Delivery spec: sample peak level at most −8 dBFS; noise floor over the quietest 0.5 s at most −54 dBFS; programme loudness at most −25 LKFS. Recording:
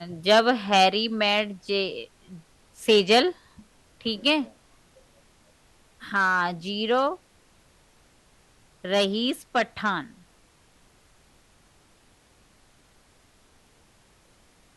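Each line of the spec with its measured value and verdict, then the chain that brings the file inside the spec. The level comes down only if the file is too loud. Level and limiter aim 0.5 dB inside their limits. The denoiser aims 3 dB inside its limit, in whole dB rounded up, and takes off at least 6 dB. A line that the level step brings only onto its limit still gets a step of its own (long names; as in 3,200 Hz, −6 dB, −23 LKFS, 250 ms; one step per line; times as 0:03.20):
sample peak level −7.0 dBFS: out of spec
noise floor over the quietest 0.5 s −59 dBFS: in spec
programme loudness −23.5 LKFS: out of spec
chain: level −2 dB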